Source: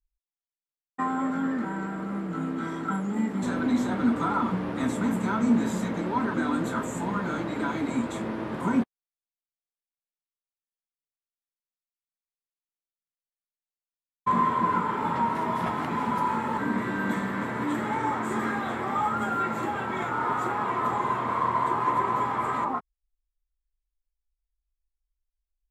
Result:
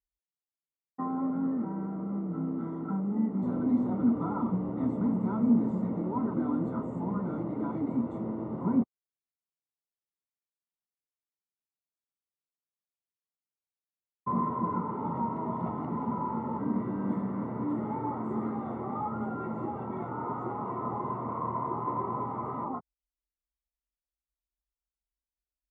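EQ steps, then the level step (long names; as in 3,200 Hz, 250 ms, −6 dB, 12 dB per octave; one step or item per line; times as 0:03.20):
Savitzky-Golay smoothing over 65 samples
high-pass filter 93 Hz
low-shelf EQ 350 Hz +9 dB
−7.5 dB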